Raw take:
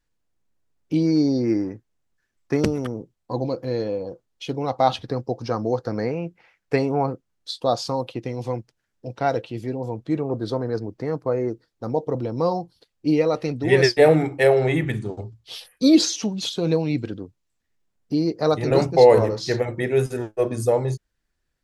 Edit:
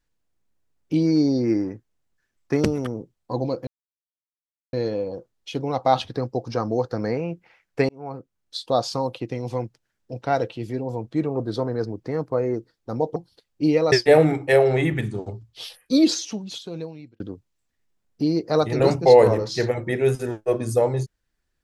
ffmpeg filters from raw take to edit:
-filter_complex "[0:a]asplit=6[a][b][c][d][e][f];[a]atrim=end=3.67,asetpts=PTS-STARTPTS,afade=t=out:st=3.666:d=0.004:c=hsin,apad=pad_dur=1.06[g];[b]atrim=start=3.67:end=6.83,asetpts=PTS-STARTPTS,afade=t=in:d=0.004:c=hsin,afade=t=out:st=3.156:d=0.004:c=hsin[h];[c]atrim=start=6.83:end=12.102,asetpts=PTS-STARTPTS,afade=t=in:d=0.72[i];[d]atrim=start=12.598:end=13.362[j];[e]atrim=start=13.828:end=17.11,asetpts=PTS-STARTPTS,afade=t=out:st=1.722:d=1.56[k];[f]atrim=start=17.11,asetpts=PTS-STARTPTS,afade=t=in:d=0.004:c=hsin[l];[g][h][i]concat=n=3:v=0:a=1[m];[m][j]acrossfade=d=0.004:c1=hsin:c2=hsin[n];[k][l]concat=n=2:v=0:a=1[o];[n][o]acrossfade=d=0.004:c1=hsin:c2=hsin"

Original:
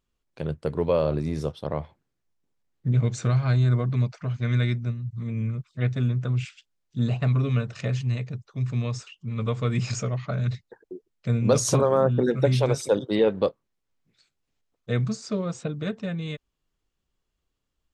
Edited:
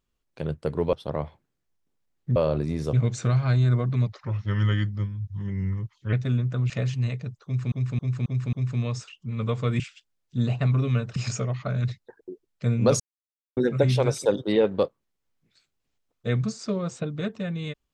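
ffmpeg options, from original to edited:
-filter_complex "[0:a]asplit=15[a][b][c][d][e][f][g][h][i][j][k][l][m][n][o];[a]atrim=end=0.932[p];[b]atrim=start=1.498:end=2.932[q];[c]atrim=start=0.928:end=1.502[r];[d]atrim=start=2.928:end=4.074[s];[e]atrim=start=4.07:end=5.84,asetpts=PTS-STARTPTS,asetrate=37926,aresample=44100[t];[f]atrim=start=5.836:end=6.412[u];[g]atrim=start=7.768:end=8.792[v];[h]atrim=start=8.518:end=8.792[w];[i]atrim=start=8.518:end=8.792[x];[j]atrim=start=8.518:end=8.792[y];[k]atrim=start=8.518:end=9.792[z];[l]atrim=start=6.408:end=7.772[aa];[m]atrim=start=9.788:end=11.63,asetpts=PTS-STARTPTS,afade=t=out:st=1.838:d=0.004:c=hsin[ab];[n]atrim=start=11.63:end=12.2,asetpts=PTS-STARTPTS,volume=0[ac];[o]atrim=start=12.2,asetpts=PTS-STARTPTS,afade=t=in:d=0.004:c=hsin[ad];[p][q]acrossfade=d=0.004:c1=hsin:c2=hsin[ae];[ae][r]acrossfade=d=0.004:c1=hsin:c2=hsin[af];[af][s]acrossfade=d=0.004:c1=hsin:c2=hsin[ag];[ag][t]acrossfade=d=0.004:c1=hsin:c2=hsin[ah];[ah][u]acrossfade=d=0.004:c1=hsin:c2=hsin[ai];[ai][v]acrossfade=d=0.004:c1=hsin:c2=hsin[aj];[aj][w]acrossfade=d=0.004:c1=hsin:c2=hsin[ak];[ak][x]acrossfade=d=0.004:c1=hsin:c2=hsin[al];[al][y]acrossfade=d=0.004:c1=hsin:c2=hsin[am];[am][z]acrossfade=d=0.004:c1=hsin:c2=hsin[an];[an][aa]acrossfade=d=0.004:c1=hsin:c2=hsin[ao];[ab][ac][ad]concat=n=3:v=0:a=1[ap];[ao][ap]acrossfade=d=0.004:c1=hsin:c2=hsin"

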